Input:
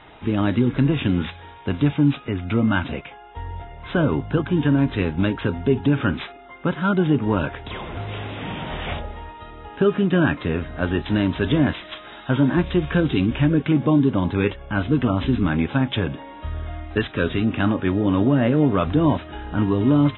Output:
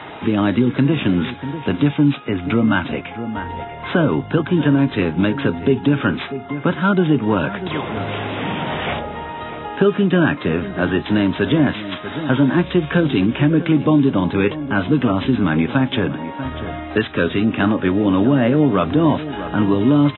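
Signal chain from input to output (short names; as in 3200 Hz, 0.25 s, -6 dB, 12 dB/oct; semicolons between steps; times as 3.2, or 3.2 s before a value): HPF 130 Hz 12 dB/oct; outdoor echo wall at 110 m, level -15 dB; three-band squash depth 40%; gain +4 dB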